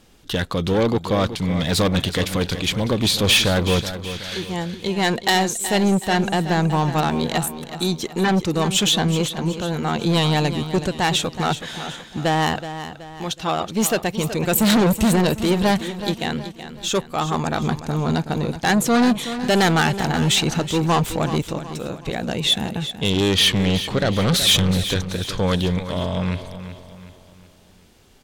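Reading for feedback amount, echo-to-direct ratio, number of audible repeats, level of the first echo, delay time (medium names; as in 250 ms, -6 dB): 44%, -10.5 dB, 4, -11.5 dB, 374 ms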